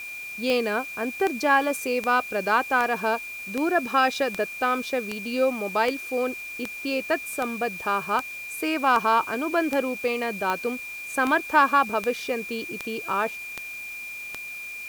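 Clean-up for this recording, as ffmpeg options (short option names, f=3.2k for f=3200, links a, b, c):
-af "adeclick=t=4,bandreject=f=2.4k:w=30,afwtdn=0.0045"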